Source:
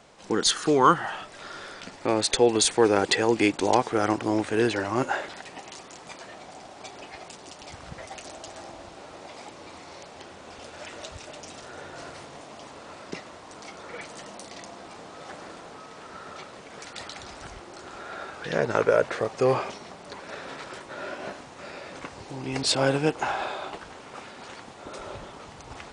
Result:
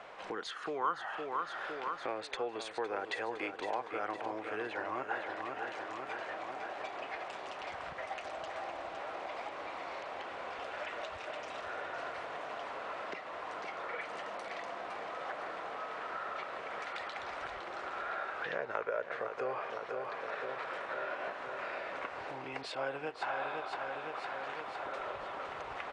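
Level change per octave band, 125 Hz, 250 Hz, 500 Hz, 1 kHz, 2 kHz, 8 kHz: -22.0, -19.0, -12.0, -7.0, -5.5, -26.0 dB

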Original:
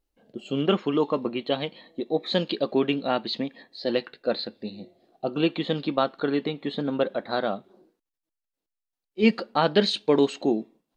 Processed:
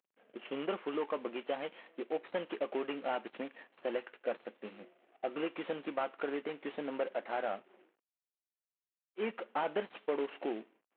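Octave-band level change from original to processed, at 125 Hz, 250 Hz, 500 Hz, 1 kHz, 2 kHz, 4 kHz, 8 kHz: -24.0 dB, -16.0 dB, -11.0 dB, -9.5 dB, -9.5 dB, -19.5 dB, n/a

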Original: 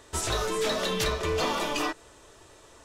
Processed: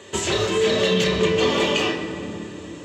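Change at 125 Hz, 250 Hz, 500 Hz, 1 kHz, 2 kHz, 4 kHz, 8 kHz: +8.0, +11.0, +9.5, +2.5, +7.5, +8.0, +3.5 dB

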